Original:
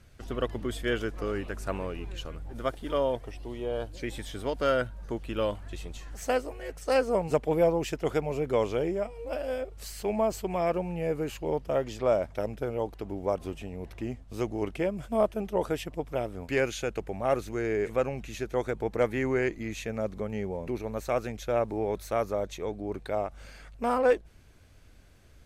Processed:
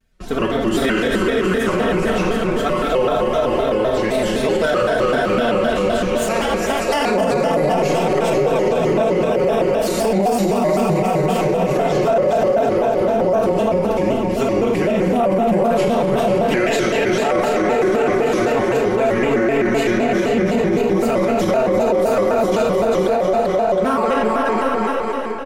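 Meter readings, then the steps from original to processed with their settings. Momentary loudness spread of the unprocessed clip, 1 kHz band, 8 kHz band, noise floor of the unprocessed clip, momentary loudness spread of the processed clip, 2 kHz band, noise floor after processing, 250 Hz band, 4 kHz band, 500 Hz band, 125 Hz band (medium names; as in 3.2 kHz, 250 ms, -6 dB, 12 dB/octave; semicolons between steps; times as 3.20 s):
10 LU, +15.5 dB, +13.5 dB, -53 dBFS, 2 LU, +14.0 dB, -20 dBFS, +15.5 dB, +14.5 dB, +13.0 dB, +11.5 dB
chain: gate -44 dBFS, range -22 dB; comb 4.9 ms, depth 83%; flange 1.3 Hz, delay 8.4 ms, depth 2.7 ms, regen -61%; bouncing-ball echo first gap 400 ms, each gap 0.8×, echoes 5; algorithmic reverb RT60 2.2 s, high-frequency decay 0.7×, pre-delay 5 ms, DRR -1.5 dB; loudness maximiser +22.5 dB; vibrato with a chosen wave square 3.9 Hz, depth 160 cents; trim -8 dB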